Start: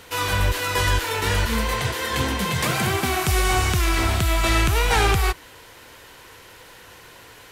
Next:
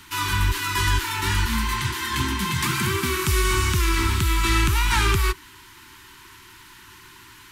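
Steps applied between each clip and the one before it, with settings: Chebyshev band-stop 390–870 Hz, order 5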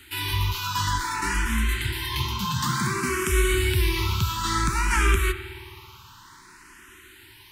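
spring tank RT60 2.6 s, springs 54 ms, chirp 60 ms, DRR 9.5 dB; barber-pole phaser +0.56 Hz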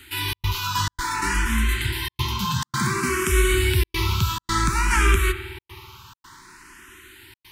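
trance gate "xxx.xxxx.xxxxxxx" 137 bpm -60 dB; trim +2.5 dB

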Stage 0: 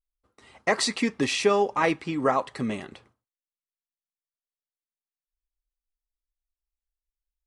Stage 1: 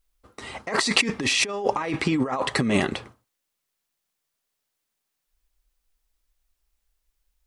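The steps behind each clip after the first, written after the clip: compressor with a negative ratio -33 dBFS, ratio -1; trim +8.5 dB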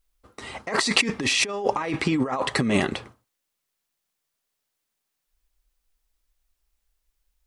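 no audible change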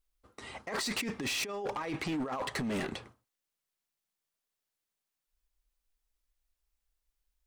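overload inside the chain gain 22.5 dB; trim -8 dB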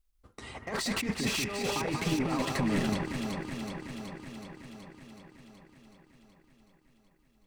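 tone controls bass +7 dB, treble +1 dB; echo whose repeats swap between lows and highs 187 ms, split 2.2 kHz, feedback 83%, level -2.5 dB; transient shaper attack +1 dB, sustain -4 dB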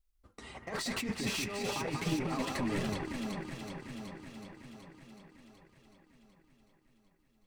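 flange 0.35 Hz, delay 1.6 ms, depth 9.2 ms, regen -43%

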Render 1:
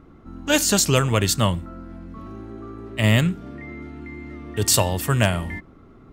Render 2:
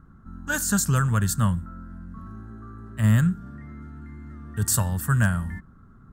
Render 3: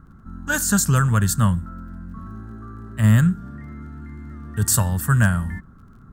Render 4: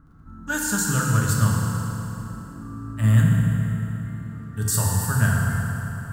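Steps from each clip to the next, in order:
FFT filter 210 Hz 0 dB, 310 Hz -14 dB, 670 Hz -14 dB, 1.6 kHz +2 dB, 2.2 kHz -20 dB, 5.5 kHz -11 dB, 7.9 kHz -3 dB
crackle 30 per s -53 dBFS; trim +4 dB
FDN reverb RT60 3.5 s, high-frequency decay 0.75×, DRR -3 dB; trim -6.5 dB

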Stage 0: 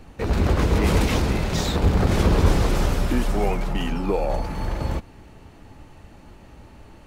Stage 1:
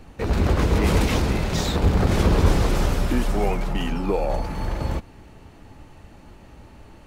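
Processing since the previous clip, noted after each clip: no audible change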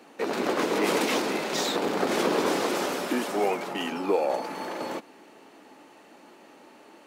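high-pass 270 Hz 24 dB/octave

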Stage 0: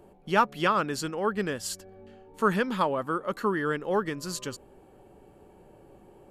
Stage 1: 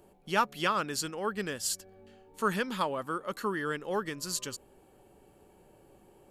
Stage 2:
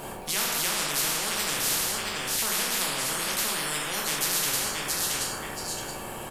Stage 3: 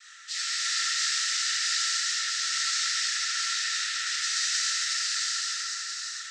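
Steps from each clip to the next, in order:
treble shelf 2.7 kHz +10 dB; trim -6 dB
feedback delay 674 ms, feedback 17%, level -13 dB; plate-style reverb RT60 0.71 s, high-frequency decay 0.65×, DRR -3.5 dB; spectrum-flattening compressor 10:1
noise-vocoded speech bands 12; rippled Chebyshev high-pass 1.3 kHz, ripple 9 dB; gated-style reverb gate 490 ms flat, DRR -5.5 dB

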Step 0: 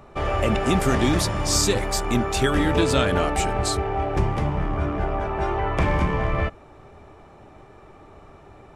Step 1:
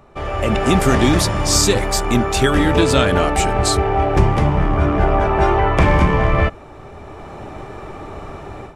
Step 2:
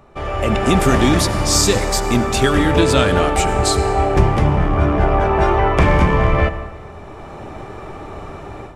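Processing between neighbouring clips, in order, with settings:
level rider gain up to 16 dB; trim -1 dB
reverberation RT60 1.6 s, pre-delay 68 ms, DRR 12 dB

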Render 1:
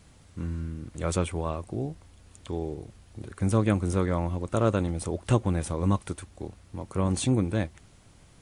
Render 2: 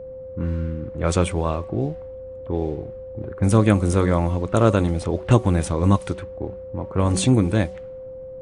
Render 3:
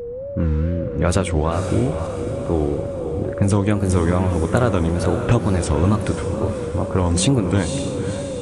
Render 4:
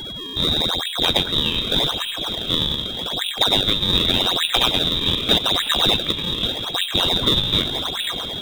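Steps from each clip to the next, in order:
level-controlled noise filter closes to 650 Hz, open at -22 dBFS; de-hum 187.7 Hz, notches 6; whistle 520 Hz -41 dBFS; trim +7.5 dB
compression, threshold -20 dBFS, peak gain reduction 10.5 dB; wow and flutter 150 cents; echo that smears into a reverb 530 ms, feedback 51%, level -7.5 dB; trim +6.5 dB
frequency inversion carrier 3.8 kHz; in parallel at -4 dB: decimation with a swept rate 35×, swing 160% 0.84 Hz; on the sum: trim -3.5 dB

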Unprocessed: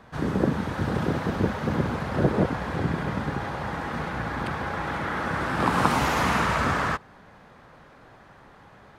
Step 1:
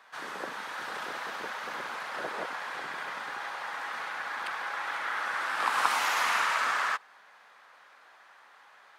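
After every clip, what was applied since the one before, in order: high-pass 1.1 kHz 12 dB/octave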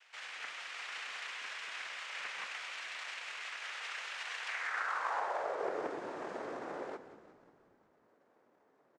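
noise-vocoded speech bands 3; band-pass sweep 2.7 kHz -> 260 Hz, 4.43–5.97 s; frequency-shifting echo 180 ms, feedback 57%, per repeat -35 Hz, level -13 dB; trim +2.5 dB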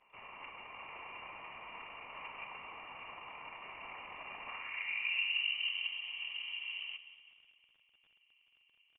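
vowel filter a; crackle 34 per s -62 dBFS; frequency inversion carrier 3.5 kHz; trim +8.5 dB

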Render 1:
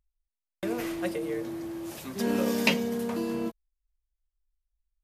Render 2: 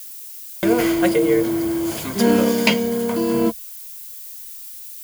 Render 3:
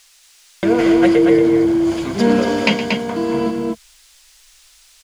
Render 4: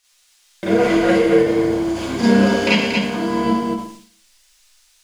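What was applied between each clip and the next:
rippled EQ curve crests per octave 1.8, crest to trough 7 dB; level rider gain up to 13 dB; added noise violet -36 dBFS
distance through air 97 m; on a send: loudspeakers at several distances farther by 40 m -12 dB, 80 m -5 dB; on the sum: trim +2 dB
Schroeder reverb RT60 0.65 s, combs from 31 ms, DRR -9 dB; gate -34 dBFS, range -8 dB; endings held to a fixed fall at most 100 dB/s; trim -8 dB

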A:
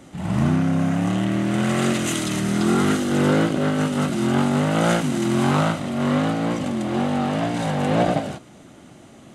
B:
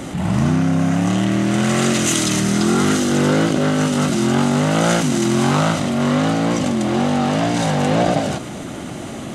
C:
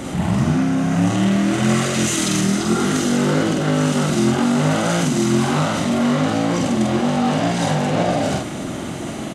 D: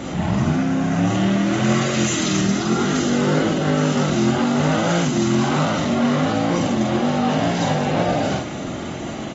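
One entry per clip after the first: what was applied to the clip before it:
dynamic bell 5.9 kHz, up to +7 dB, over -48 dBFS, Q 1.2; level flattener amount 50%; trim +1.5 dB
peak limiter -12 dBFS, peak gain reduction 7.5 dB; doubling 46 ms -2.5 dB
trim -2 dB; AAC 24 kbps 44.1 kHz

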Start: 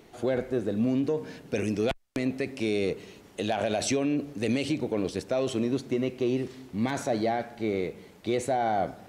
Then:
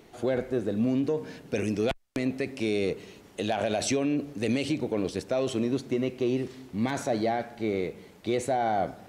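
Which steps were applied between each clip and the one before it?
no audible change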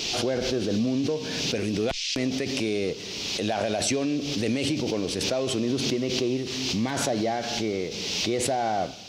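band noise 2.4–6 kHz -45 dBFS; swell ahead of each attack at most 25 dB/s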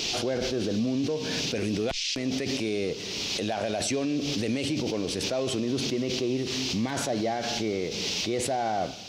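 peak limiter -21 dBFS, peak gain reduction 8 dB; trim +1 dB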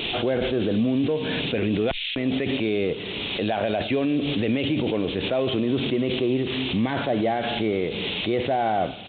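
resampled via 8 kHz; trim +5 dB

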